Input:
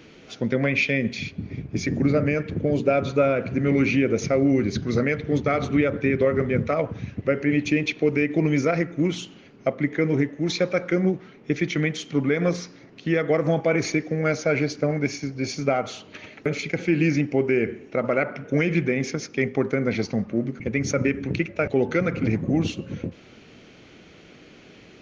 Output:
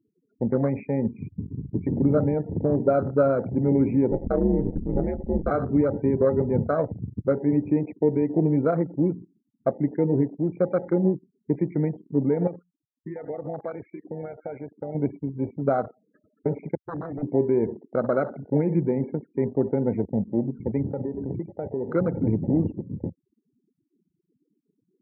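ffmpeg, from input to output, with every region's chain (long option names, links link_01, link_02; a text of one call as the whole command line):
ffmpeg -i in.wav -filter_complex "[0:a]asettb=1/sr,asplit=3[link_01][link_02][link_03];[link_01]atrim=end=4.114[link_04];[link_02]atrim=start=4.11:end=5.51,asetpts=PTS-STARTPTS,afade=type=in:duration=0.004:curve=qsin,afade=type=out:start_time=1.396:duration=0.004:curve=qsin,aeval=exprs='val(0)*sin(2*PI*82*n/s)':channel_layout=same,lowshelf=frequency=92:gain=6[link_05];[link_03]atrim=start=5.506[link_06];[link_04][link_05]acrossfade=duration=0.004:curve1=hsin:curve2=qsin[link_07];[link_07][link_06]acrossfade=duration=0.004:curve1=qsin:curve2=hsin,asettb=1/sr,asplit=3[link_08][link_09][link_10];[link_08]atrim=end=12.474[link_11];[link_09]atrim=start=12.47:end=14.95,asetpts=PTS-STARTPTS,afade=type=in:duration=0.004:curve=qsin,afade=type=out:start_time=2.476:duration=0.004:curve=qsin,tiltshelf=frequency=660:gain=-7.5,acompressor=threshold=-28dB:ratio=4:attack=3.2:release=140:knee=1:detection=peak[link_12];[link_10]atrim=start=14.946[link_13];[link_11][link_12]acrossfade=duration=0.004:curve1=hsin:curve2=qsin[link_14];[link_14][link_13]acrossfade=duration=0.004:curve1=qsin:curve2=hsin,asettb=1/sr,asplit=3[link_15][link_16][link_17];[link_15]atrim=end=16.754[link_18];[link_16]atrim=start=16.75:end=17.23,asetpts=PTS-STARTPTS,afade=type=in:duration=0.004:curve=qsin,afade=type=out:start_time=0.476:duration=0.004:curve=qsin,agate=range=-33dB:threshold=-21dB:ratio=3:release=100:detection=peak,equalizer=frequency=180:width_type=o:width=2.2:gain=-3.5,aeval=exprs='0.0531*(abs(mod(val(0)/0.0531+3,4)-2)-1)':channel_layout=same[link_19];[link_17]atrim=start=17.226[link_20];[link_18][link_19]acrossfade=duration=0.004:curve1=hsin:curve2=qsin[link_21];[link_21][link_20]acrossfade=duration=0.004:curve1=qsin:curve2=hsin,asettb=1/sr,asplit=3[link_22][link_23][link_24];[link_22]atrim=end=20.924[link_25];[link_23]atrim=start=20.92:end=21.95,asetpts=PTS-STARTPTS,afade=type=in:duration=0.004:curve=qsin,afade=type=out:start_time=1.026:duration=0.004:curve=qsin,asuperstop=centerf=4200:order=4:qfactor=0.77,equalizer=frequency=420:width=5.2:gain=3.5,acompressor=threshold=-25dB:ratio=5:attack=3.2:release=140:knee=1:detection=peak[link_26];[link_24]atrim=start=21.946[link_27];[link_25][link_26]acrossfade=duration=0.004:curve1=hsin:curve2=qsin[link_28];[link_28][link_27]acrossfade=duration=0.004:curve1=qsin:curve2=hsin,lowpass=frequency=1800:width=0.5412,lowpass=frequency=1800:width=1.3066,afftfilt=real='re*gte(hypot(re,im),0.0224)':imag='im*gte(hypot(re,im),0.0224)':win_size=1024:overlap=0.75,afwtdn=0.0398" out.wav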